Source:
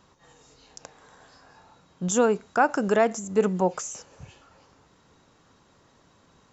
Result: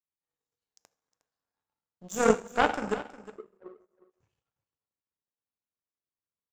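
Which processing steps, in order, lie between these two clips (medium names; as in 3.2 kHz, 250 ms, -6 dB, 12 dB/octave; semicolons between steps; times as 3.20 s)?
2.95–4.10 s: auto-wah 370–1500 Hz, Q 12, down, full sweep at -18.5 dBFS; plate-style reverb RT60 1 s, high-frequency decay 0.95×, DRR 0 dB; power-law waveshaper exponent 2; on a send: delay 360 ms -16 dB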